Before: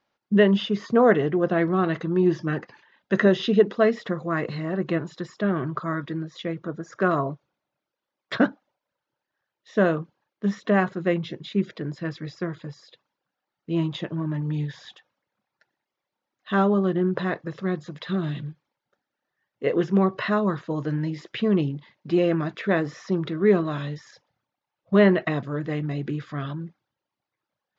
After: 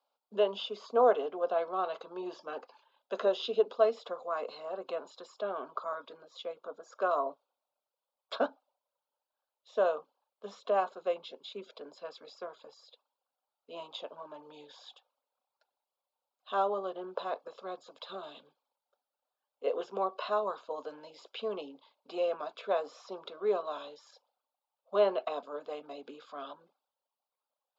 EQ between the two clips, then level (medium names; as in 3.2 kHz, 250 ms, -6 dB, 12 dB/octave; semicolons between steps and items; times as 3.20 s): Chebyshev high-pass 270 Hz, order 5; peaking EQ 6 kHz -10.5 dB 0.3 oct; static phaser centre 780 Hz, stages 4; -2.0 dB